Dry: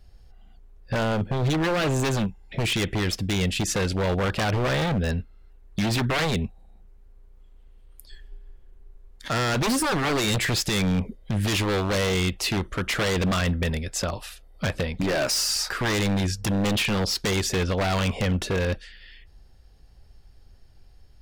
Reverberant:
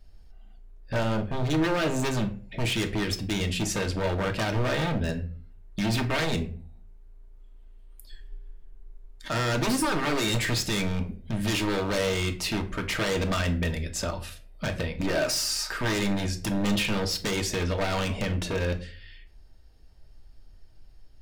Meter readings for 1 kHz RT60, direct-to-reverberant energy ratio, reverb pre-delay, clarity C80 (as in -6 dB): 0.35 s, 4.0 dB, 3 ms, 18.5 dB